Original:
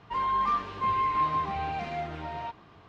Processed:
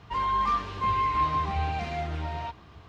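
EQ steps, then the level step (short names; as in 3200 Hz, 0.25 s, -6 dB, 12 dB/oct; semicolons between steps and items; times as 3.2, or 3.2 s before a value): bell 66 Hz +13 dB 0.84 oct; low shelf 170 Hz +3 dB; high shelf 3800 Hz +8.5 dB; 0.0 dB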